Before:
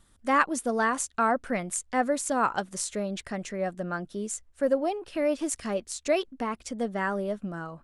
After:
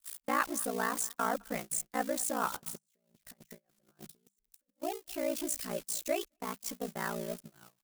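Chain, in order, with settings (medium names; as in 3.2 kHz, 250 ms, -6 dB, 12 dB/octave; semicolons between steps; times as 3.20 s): zero-crossing glitches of -24 dBFS; 2.53–4.81 s: compressor with a negative ratio -35 dBFS, ratio -0.5; ring modulator 29 Hz; hum notches 50/100/150/200 Hz; delay 217 ms -22.5 dB; gate -33 dBFS, range -30 dB; trim -5 dB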